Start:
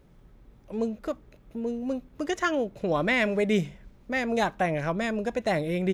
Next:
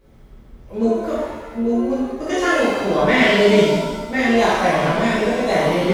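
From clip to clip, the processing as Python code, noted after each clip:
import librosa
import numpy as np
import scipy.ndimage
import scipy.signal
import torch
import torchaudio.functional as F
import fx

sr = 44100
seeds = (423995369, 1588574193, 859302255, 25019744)

y = fx.rev_shimmer(x, sr, seeds[0], rt60_s=1.2, semitones=7, shimmer_db=-8, drr_db=-10.0)
y = F.gain(torch.from_numpy(y), -1.0).numpy()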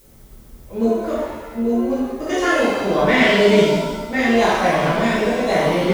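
y = fx.dmg_noise_colour(x, sr, seeds[1], colour='blue', level_db=-54.0)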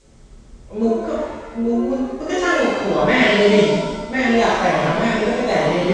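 y = scipy.signal.sosfilt(scipy.signal.butter(8, 8500.0, 'lowpass', fs=sr, output='sos'), x)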